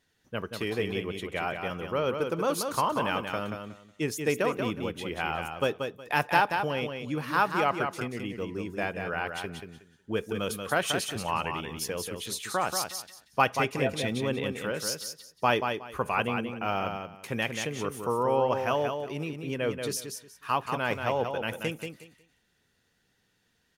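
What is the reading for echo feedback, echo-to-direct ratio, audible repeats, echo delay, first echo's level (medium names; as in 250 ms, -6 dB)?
21%, -6.0 dB, 3, 183 ms, -6.0 dB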